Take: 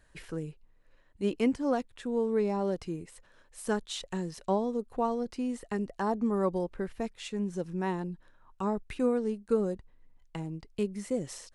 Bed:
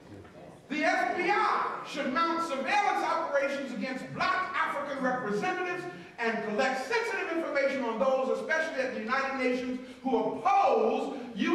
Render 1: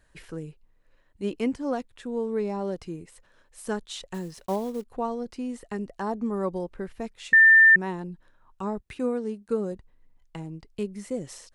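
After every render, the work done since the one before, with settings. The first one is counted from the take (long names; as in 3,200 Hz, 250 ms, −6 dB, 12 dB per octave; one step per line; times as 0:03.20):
0:04.14–0:04.85: one scale factor per block 5 bits
0:07.33–0:07.76: beep over 1,790 Hz −11 dBFS
0:08.80–0:09.72: high-pass filter 46 Hz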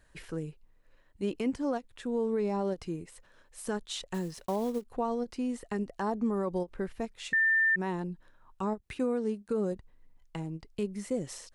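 brickwall limiter −22 dBFS, peak gain reduction 11 dB
every ending faded ahead of time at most 440 dB per second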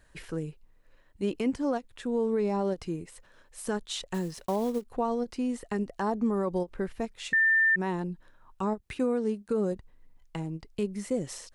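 level +2.5 dB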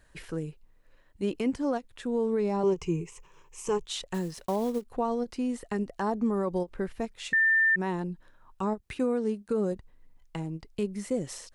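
0:02.63–0:03.87: EQ curve with evenly spaced ripples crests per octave 0.74, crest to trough 15 dB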